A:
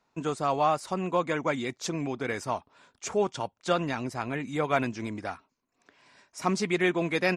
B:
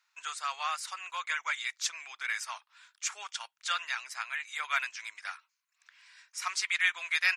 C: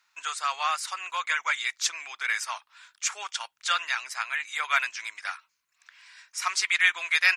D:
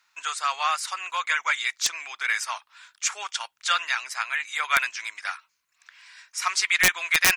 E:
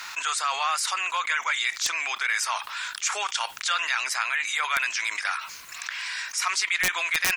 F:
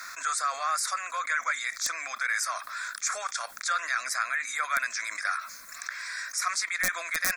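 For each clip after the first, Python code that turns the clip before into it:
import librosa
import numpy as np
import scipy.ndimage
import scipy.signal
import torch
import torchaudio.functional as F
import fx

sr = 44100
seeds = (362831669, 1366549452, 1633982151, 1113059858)

y1 = scipy.signal.sosfilt(scipy.signal.butter(4, 1400.0, 'highpass', fs=sr, output='sos'), x)
y1 = y1 * librosa.db_to_amplitude(3.5)
y2 = fx.low_shelf(y1, sr, hz=410.0, db=7.0)
y2 = y2 * librosa.db_to_amplitude(5.5)
y3 = (np.mod(10.0 ** (10.5 / 20.0) * y2 + 1.0, 2.0) - 1.0) / 10.0 ** (10.5 / 20.0)
y3 = y3 * librosa.db_to_amplitude(2.5)
y4 = fx.env_flatten(y3, sr, amount_pct=70)
y4 = y4 * librosa.db_to_amplitude(-6.5)
y5 = fx.fixed_phaser(y4, sr, hz=590.0, stages=8)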